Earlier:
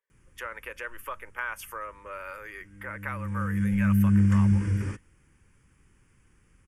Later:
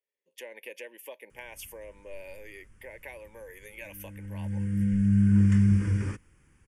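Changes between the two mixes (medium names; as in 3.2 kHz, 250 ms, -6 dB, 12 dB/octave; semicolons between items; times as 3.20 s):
speech: add Butterworth band-stop 1.3 kHz, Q 0.91; background: entry +1.20 s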